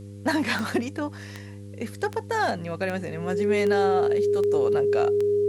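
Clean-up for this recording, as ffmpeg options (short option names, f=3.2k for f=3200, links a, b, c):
-af "adeclick=t=4,bandreject=f=100.8:t=h:w=4,bandreject=f=201.6:t=h:w=4,bandreject=f=302.4:t=h:w=4,bandreject=f=403.2:t=h:w=4,bandreject=f=504:t=h:w=4,bandreject=f=410:w=30,agate=range=-21dB:threshold=-32dB"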